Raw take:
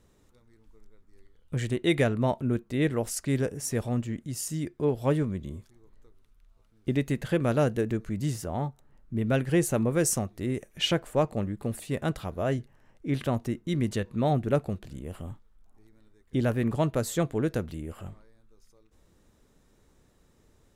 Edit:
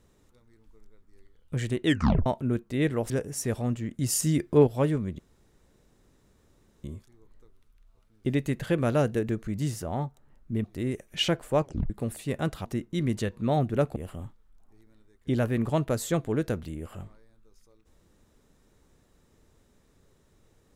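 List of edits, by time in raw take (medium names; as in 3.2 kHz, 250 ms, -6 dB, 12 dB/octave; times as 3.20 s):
1.86 s: tape stop 0.40 s
3.10–3.37 s: delete
4.26–4.94 s: gain +7 dB
5.46 s: insert room tone 1.65 s
9.26–10.27 s: delete
11.26 s: tape stop 0.27 s
12.28–13.39 s: delete
14.70–15.02 s: delete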